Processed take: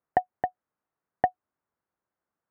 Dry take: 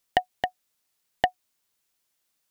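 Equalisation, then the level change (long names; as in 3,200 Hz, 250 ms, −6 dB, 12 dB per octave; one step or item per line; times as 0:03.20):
high-pass filter 55 Hz
low-pass filter 1,500 Hz 24 dB per octave
0.0 dB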